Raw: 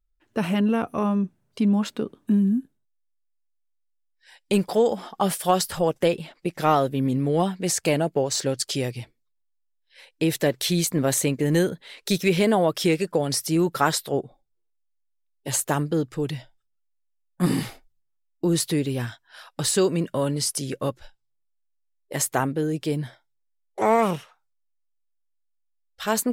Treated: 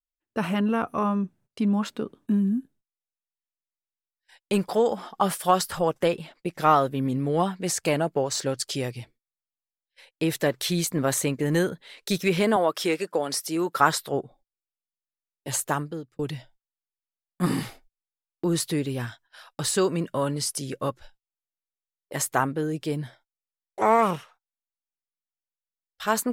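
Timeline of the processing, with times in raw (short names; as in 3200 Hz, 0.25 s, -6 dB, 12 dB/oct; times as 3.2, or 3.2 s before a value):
12.56–13.8 HPF 280 Hz
15.62–16.19 fade out
whole clip: gate -51 dBFS, range -22 dB; dynamic EQ 1200 Hz, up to +7 dB, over -39 dBFS, Q 1.3; gain -3 dB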